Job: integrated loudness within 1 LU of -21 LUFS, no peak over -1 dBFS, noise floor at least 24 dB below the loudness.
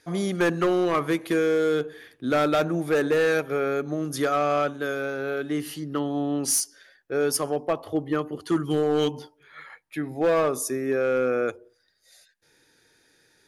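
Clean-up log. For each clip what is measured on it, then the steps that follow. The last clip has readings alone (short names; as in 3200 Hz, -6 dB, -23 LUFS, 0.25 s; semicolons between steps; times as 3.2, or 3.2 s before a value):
clipped 1.7%; flat tops at -16.5 dBFS; loudness -25.0 LUFS; peak -16.5 dBFS; loudness target -21.0 LUFS
-> clip repair -16.5 dBFS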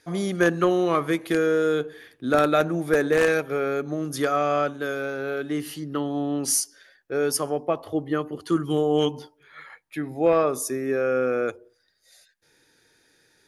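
clipped 0.0%; loudness -24.5 LUFS; peak -7.5 dBFS; loudness target -21.0 LUFS
-> gain +3.5 dB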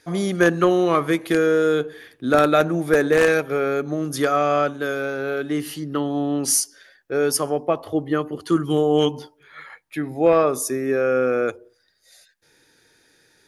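loudness -21.0 LUFS; peak -4.0 dBFS; noise floor -62 dBFS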